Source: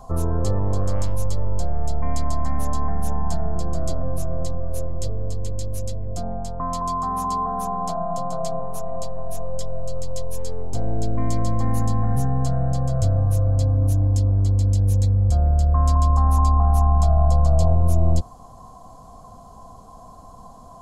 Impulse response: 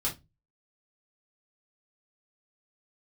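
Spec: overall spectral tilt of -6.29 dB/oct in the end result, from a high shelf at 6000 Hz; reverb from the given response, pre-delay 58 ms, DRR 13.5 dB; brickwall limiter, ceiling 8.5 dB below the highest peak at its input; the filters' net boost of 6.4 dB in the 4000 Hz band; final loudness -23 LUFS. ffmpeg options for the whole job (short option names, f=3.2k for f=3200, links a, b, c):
-filter_complex "[0:a]equalizer=f=4k:t=o:g=5.5,highshelf=f=6k:g=5.5,alimiter=limit=-15dB:level=0:latency=1,asplit=2[a][b];[1:a]atrim=start_sample=2205,adelay=58[c];[b][c]afir=irnorm=-1:irlink=0,volume=-18.5dB[d];[a][d]amix=inputs=2:normalize=0,volume=3dB"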